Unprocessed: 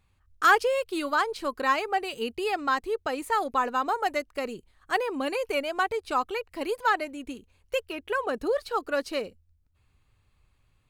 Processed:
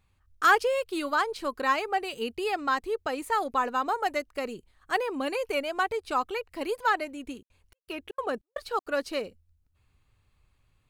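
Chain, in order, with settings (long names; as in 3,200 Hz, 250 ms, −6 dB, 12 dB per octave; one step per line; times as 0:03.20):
0:07.32–0:08.93: gate pattern "xxx..xxx." 198 BPM −60 dB
level −1 dB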